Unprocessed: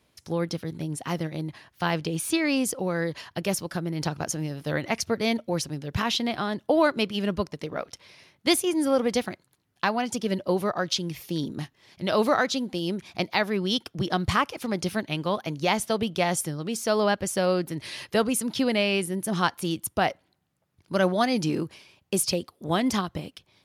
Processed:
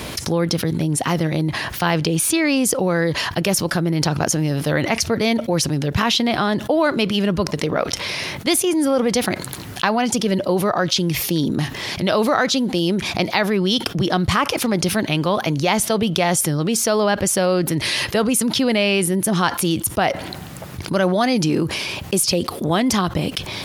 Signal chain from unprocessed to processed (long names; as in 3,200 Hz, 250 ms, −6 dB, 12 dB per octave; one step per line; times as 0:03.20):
envelope flattener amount 70%
level +2 dB